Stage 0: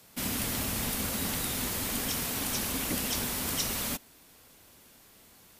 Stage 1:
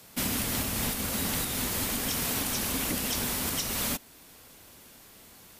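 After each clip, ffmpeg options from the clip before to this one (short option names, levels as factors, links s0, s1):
-af "alimiter=limit=0.0668:level=0:latency=1:release=291,volume=1.68"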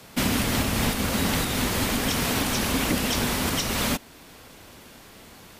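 -af "highshelf=f=6700:g=-12,volume=2.66"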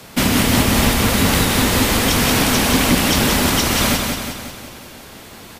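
-af "aecho=1:1:181|362|543|724|905|1086|1267:0.596|0.328|0.18|0.0991|0.0545|0.03|0.0165,volume=2.37"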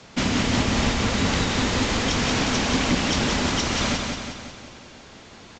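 -af "aresample=16000,aresample=44100,volume=0.473"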